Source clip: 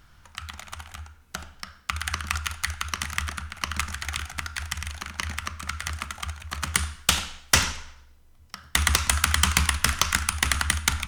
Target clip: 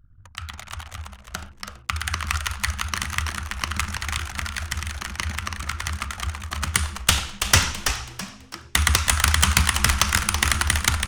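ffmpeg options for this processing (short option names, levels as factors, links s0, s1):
-filter_complex "[0:a]equalizer=f=99:w=5.5:g=13.5,anlmdn=0.01,asplit=5[s0][s1][s2][s3][s4];[s1]adelay=329,afreqshift=-140,volume=0.447[s5];[s2]adelay=658,afreqshift=-280,volume=0.138[s6];[s3]adelay=987,afreqshift=-420,volume=0.0432[s7];[s4]adelay=1316,afreqshift=-560,volume=0.0133[s8];[s0][s5][s6][s7][s8]amix=inputs=5:normalize=0,volume=1.26"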